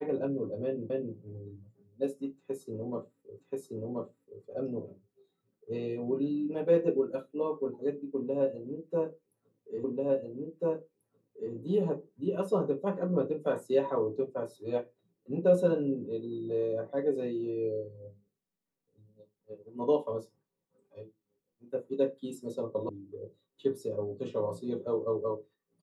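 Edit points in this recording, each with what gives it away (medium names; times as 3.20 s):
0.90 s: repeat of the last 0.26 s
3.40 s: repeat of the last 1.03 s
9.84 s: repeat of the last 1.69 s
22.89 s: sound stops dead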